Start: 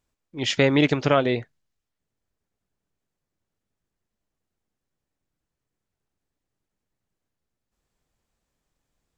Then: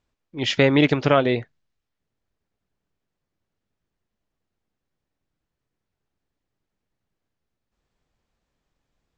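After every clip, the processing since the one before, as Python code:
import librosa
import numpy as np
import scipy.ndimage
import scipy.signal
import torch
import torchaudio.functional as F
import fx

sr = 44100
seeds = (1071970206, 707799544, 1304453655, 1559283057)

y = scipy.signal.sosfilt(scipy.signal.butter(2, 5200.0, 'lowpass', fs=sr, output='sos'), x)
y = y * librosa.db_to_amplitude(2.0)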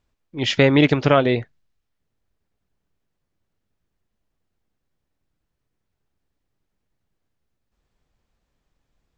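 y = fx.low_shelf(x, sr, hz=93.0, db=5.5)
y = y * librosa.db_to_amplitude(1.5)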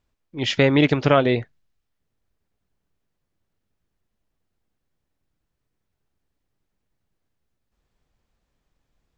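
y = fx.rider(x, sr, range_db=10, speed_s=0.5)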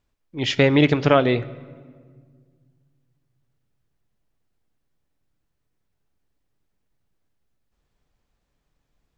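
y = fx.room_shoebox(x, sr, seeds[0], volume_m3=2300.0, walls='mixed', distance_m=0.32)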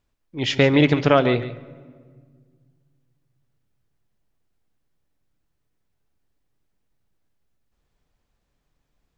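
y = x + 10.0 ** (-13.5 / 20.0) * np.pad(x, (int(143 * sr / 1000.0), 0))[:len(x)]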